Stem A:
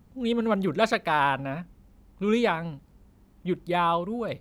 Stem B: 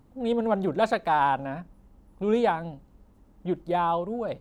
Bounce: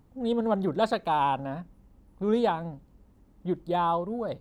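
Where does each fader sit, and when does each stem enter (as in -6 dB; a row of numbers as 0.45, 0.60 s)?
-10.0, -4.0 dB; 0.00, 0.00 s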